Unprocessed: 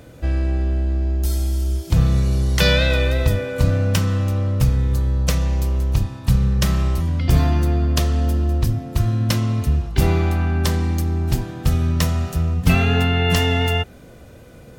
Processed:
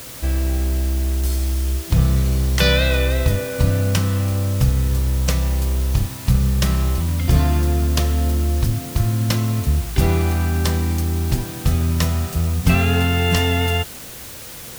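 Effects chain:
bit-depth reduction 6 bits, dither triangular

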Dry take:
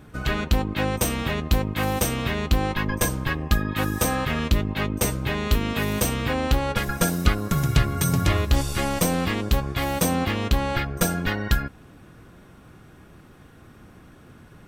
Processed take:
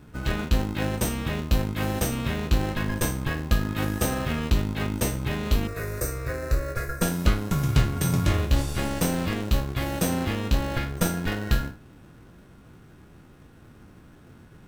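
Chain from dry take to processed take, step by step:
peak hold with a decay on every bin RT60 0.35 s
in parallel at −4 dB: decimation without filtering 38×
0:05.67–0:07.02: on the sum: phaser with its sweep stopped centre 850 Hz, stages 6
level −6.5 dB

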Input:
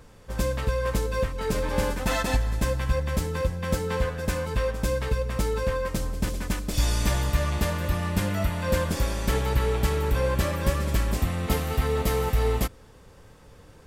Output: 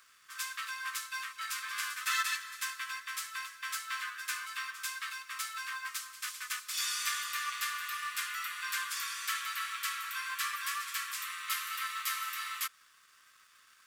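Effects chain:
Butterworth high-pass 1,100 Hz 96 dB per octave
in parallel at −9.5 dB: log-companded quantiser 4 bits
on the sum: level −3.5 dB

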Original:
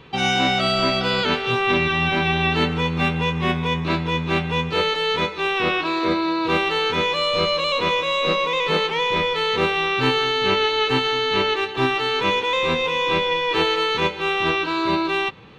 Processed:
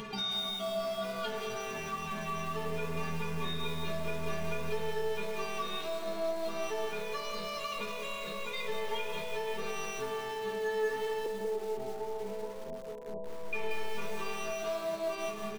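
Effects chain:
mu-law and A-law mismatch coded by mu
double-tracking delay 14 ms −9.5 dB
brickwall limiter −17 dBFS, peak gain reduction 9 dB
stiff-string resonator 210 Hz, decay 0.45 s, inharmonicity 0.008
flanger 0.61 Hz, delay 5.1 ms, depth 9.2 ms, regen −83%
repeating echo 320 ms, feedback 57%, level −21.5 dB
upward compression, threshold −36 dBFS
0:11.26–0:13.53: Butterworth low-pass 920 Hz 72 dB per octave
comb and all-pass reverb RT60 2.6 s, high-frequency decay 0.3×, pre-delay 80 ms, DRR 9 dB
feedback echo at a low word length 183 ms, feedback 35%, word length 8 bits, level −8 dB
level +5.5 dB

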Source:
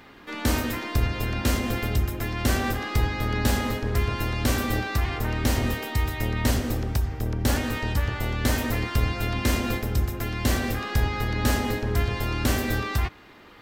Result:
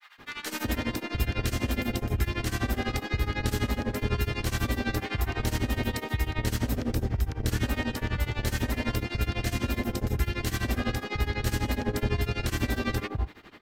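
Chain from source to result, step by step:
brickwall limiter −18.5 dBFS, peak gain reduction 9.5 dB
multiband delay without the direct sound highs, lows 190 ms, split 1,000 Hz
granular cloud 102 ms, grains 12 per second, spray 11 ms, pitch spread up and down by 0 semitones
level +3 dB

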